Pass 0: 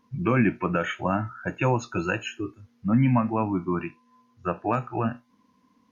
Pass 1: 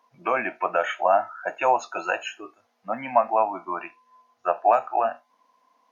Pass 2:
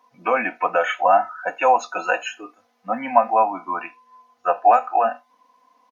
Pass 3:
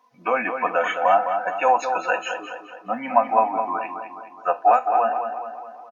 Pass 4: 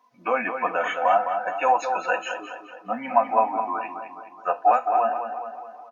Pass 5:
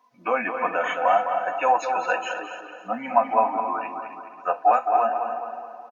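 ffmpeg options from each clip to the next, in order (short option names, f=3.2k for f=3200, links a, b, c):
-af "highpass=f=690:t=q:w=4.9"
-af "aecho=1:1:4:0.65,volume=2.5dB"
-filter_complex "[0:a]asplit=2[a][b];[b]adelay=210,lowpass=f=3.2k:p=1,volume=-7dB,asplit=2[c][d];[d]adelay=210,lowpass=f=3.2k:p=1,volume=0.54,asplit=2[e][f];[f]adelay=210,lowpass=f=3.2k:p=1,volume=0.54,asplit=2[g][h];[h]adelay=210,lowpass=f=3.2k:p=1,volume=0.54,asplit=2[i][j];[j]adelay=210,lowpass=f=3.2k:p=1,volume=0.54,asplit=2[k][l];[l]adelay=210,lowpass=f=3.2k:p=1,volume=0.54,asplit=2[m][n];[n]adelay=210,lowpass=f=3.2k:p=1,volume=0.54[o];[a][c][e][g][i][k][m][o]amix=inputs=8:normalize=0,volume=-2dB"
-af "flanger=delay=3:depth=5.3:regen=-57:speed=0.4:shape=sinusoidal,volume=2dB"
-af "aecho=1:1:273|546|819:0.266|0.0772|0.0224"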